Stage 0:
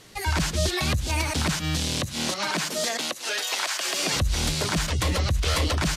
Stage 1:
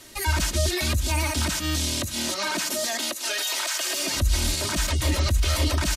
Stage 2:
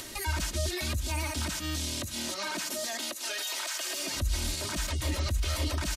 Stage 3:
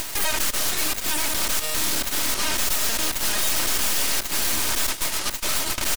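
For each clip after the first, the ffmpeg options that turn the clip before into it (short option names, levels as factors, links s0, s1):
-filter_complex "[0:a]highshelf=f=8900:g=10.5,aecho=1:1:3.2:0.72,acrossover=split=170[s0][s1];[s1]alimiter=limit=0.126:level=0:latency=1:release=16[s2];[s0][s2]amix=inputs=2:normalize=0"
-af "acompressor=mode=upward:threshold=0.0631:ratio=2.5,volume=0.422"
-af "crystalizer=i=1.5:c=0,highpass=f=1000:t=q:w=1.6,aeval=exprs='0.168*(cos(1*acos(clip(val(0)/0.168,-1,1)))-cos(1*PI/2))+0.0841*(cos(8*acos(clip(val(0)/0.168,-1,1)))-cos(8*PI/2))':c=same"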